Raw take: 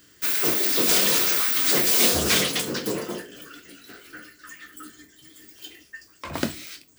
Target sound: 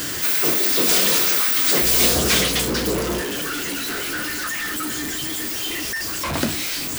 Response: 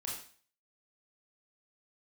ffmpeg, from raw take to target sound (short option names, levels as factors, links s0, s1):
-filter_complex "[0:a]aeval=exprs='val(0)+0.5*0.0891*sgn(val(0))':c=same,asettb=1/sr,asplit=3[s0][s1][s2];[s0]atrim=end=1.824[s3];[s1]atrim=start=1.82:end=3.21,asetpts=PTS-STARTPTS,afade=t=in:d=0.004:c=qsin,afade=t=out:st=1.386:d=0.004:c=qsin,aeval=exprs='val(0)+0.0282*(sin(2*PI*60*n/s)+sin(2*PI*2*60*n/s)/2+sin(2*PI*3*60*n/s)/3+sin(2*PI*4*60*n/s)/4+sin(2*PI*5*60*n/s)/5)':c=same[s4];[s2]atrim=start=3.206[s5];[s3][s4]acrossfade=d=0.004:c1=hsin:c2=qsin[s6];[s6][s5]acrossfade=d=0.004:c1=qsin:c2=hsin"